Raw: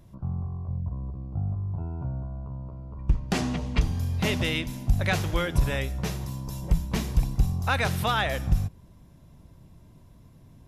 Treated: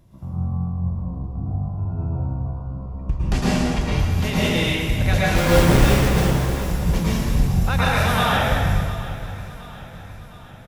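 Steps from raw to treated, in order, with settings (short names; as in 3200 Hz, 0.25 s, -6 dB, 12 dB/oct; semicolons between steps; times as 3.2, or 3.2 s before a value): 5.35–6.5 half-waves squared off; feedback echo 0.712 s, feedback 55%, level -16.5 dB; plate-style reverb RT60 1.9 s, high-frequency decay 0.8×, pre-delay 95 ms, DRR -8 dB; gain -1.5 dB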